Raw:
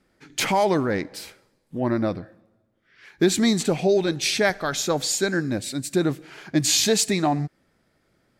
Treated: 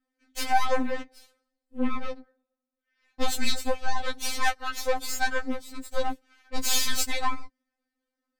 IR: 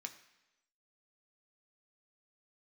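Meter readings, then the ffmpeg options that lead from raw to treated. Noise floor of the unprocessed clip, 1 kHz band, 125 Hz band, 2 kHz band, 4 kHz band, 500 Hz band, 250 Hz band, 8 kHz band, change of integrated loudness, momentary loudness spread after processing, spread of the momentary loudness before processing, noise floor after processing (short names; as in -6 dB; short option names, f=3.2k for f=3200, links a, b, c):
-68 dBFS, -1.0 dB, -17.5 dB, -3.0 dB, -5.5 dB, -10.0 dB, -12.0 dB, -7.0 dB, -7.0 dB, 15 LU, 11 LU, under -85 dBFS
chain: -af "aeval=exprs='0.398*(cos(1*acos(clip(val(0)/0.398,-1,1)))-cos(1*PI/2))+0.0891*(cos(4*acos(clip(val(0)/0.398,-1,1)))-cos(4*PI/2))+0.0447*(cos(7*acos(clip(val(0)/0.398,-1,1)))-cos(7*PI/2))':c=same,afftfilt=real='re*3.46*eq(mod(b,12),0)':imag='im*3.46*eq(mod(b,12),0)':win_size=2048:overlap=0.75,volume=-2.5dB"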